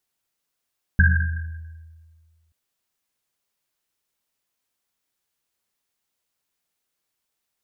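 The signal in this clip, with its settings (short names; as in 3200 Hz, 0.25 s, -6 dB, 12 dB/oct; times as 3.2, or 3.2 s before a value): Risset drum length 1.53 s, pitch 81 Hz, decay 1.82 s, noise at 1600 Hz, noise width 110 Hz, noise 35%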